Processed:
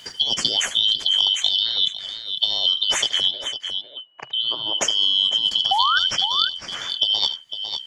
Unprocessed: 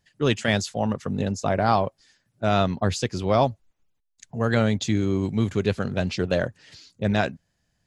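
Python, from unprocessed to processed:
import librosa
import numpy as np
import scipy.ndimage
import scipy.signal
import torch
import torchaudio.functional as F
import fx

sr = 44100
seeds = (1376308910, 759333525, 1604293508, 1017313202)

p1 = fx.band_shuffle(x, sr, order='3412')
p2 = fx.over_compress(p1, sr, threshold_db=-24.0, ratio=-0.5)
p3 = fx.cabinet(p2, sr, low_hz=120.0, low_slope=12, high_hz=2500.0, hz=(130.0, 200.0, 330.0, 620.0, 920.0, 2000.0), db=(7, -7, 5, 9, 5, -4), at=(3.31, 4.78))
p4 = fx.spec_paint(p3, sr, seeds[0], shape='rise', start_s=5.71, length_s=0.28, low_hz=740.0, high_hz=1600.0, level_db=-17.0)
p5 = p4 + fx.echo_multitap(p4, sr, ms=(76, 502), db=(-15.5, -15.5), dry=0)
p6 = fx.band_squash(p5, sr, depth_pct=70)
y = p6 * librosa.db_to_amplitude(4.5)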